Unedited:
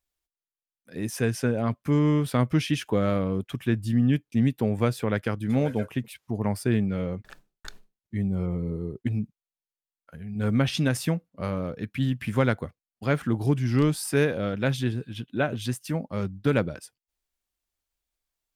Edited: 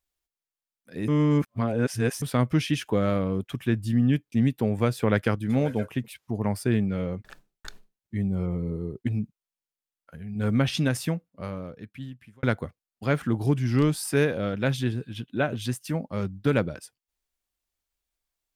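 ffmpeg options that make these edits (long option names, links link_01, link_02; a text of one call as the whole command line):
ffmpeg -i in.wav -filter_complex "[0:a]asplit=6[link_01][link_02][link_03][link_04][link_05][link_06];[link_01]atrim=end=1.082[link_07];[link_02]atrim=start=1.078:end=2.222,asetpts=PTS-STARTPTS,areverse[link_08];[link_03]atrim=start=2.218:end=5.032[link_09];[link_04]atrim=start=5.028:end=5.362,asetpts=PTS-STARTPTS,volume=3.5dB[link_10];[link_05]atrim=start=5.358:end=12.43,asetpts=PTS-STARTPTS,afade=type=out:start_time=5.442:duration=1.63[link_11];[link_06]atrim=start=12.43,asetpts=PTS-STARTPTS,afade=type=in:duration=0.004:curve=hsin[link_12];[link_07][link_08]acrossfade=duration=0.004:curve1=hsin:curve2=hsin[link_13];[link_13][link_09]acrossfade=duration=0.004:curve1=hsin:curve2=hsin[link_14];[link_14][link_10]acrossfade=duration=0.004:curve1=hsin:curve2=hsin[link_15];[link_11][link_12]concat=n=2:v=0:a=1[link_16];[link_15][link_16]acrossfade=duration=0.004:curve1=hsin:curve2=hsin" out.wav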